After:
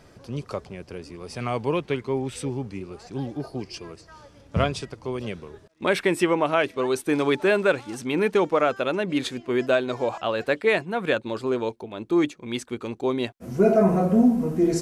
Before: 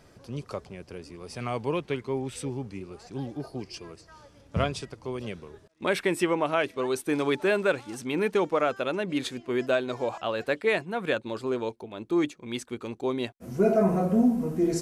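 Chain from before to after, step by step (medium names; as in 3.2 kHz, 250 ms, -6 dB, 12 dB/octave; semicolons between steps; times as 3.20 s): treble shelf 8.3 kHz -4 dB; trim +4 dB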